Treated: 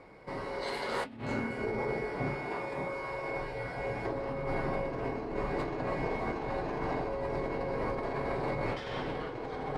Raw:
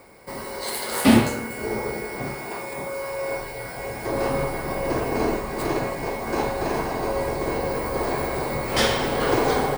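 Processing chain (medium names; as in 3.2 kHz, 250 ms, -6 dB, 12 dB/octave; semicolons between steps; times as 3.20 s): low-pass 3.4 kHz 12 dB/octave; bass shelf 430 Hz +2.5 dB; compressor with a negative ratio -27 dBFS, ratio -1; flange 0.32 Hz, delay 6.3 ms, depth 1.2 ms, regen -59%; trim -3.5 dB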